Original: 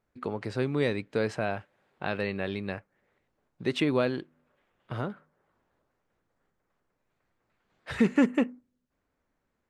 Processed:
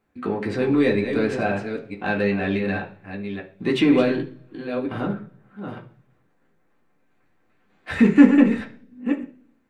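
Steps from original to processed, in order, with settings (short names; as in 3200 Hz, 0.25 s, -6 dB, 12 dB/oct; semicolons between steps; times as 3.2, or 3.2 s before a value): reverse delay 0.486 s, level -8.5 dB; in parallel at -4.5 dB: soft clip -28.5 dBFS, distortion -6 dB; on the sum: reverb RT60 0.45 s, pre-delay 3 ms, DRR -1.5 dB; gain -1 dB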